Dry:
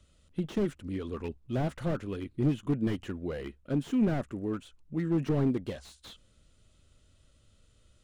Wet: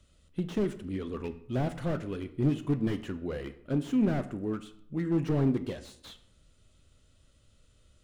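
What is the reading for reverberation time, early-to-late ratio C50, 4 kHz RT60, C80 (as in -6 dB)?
0.70 s, 14.5 dB, 0.45 s, 17.0 dB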